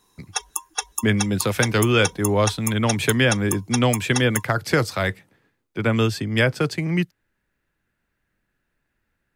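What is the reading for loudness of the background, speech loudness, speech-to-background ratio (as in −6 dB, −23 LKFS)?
−28.5 LKFS, −21.5 LKFS, 7.0 dB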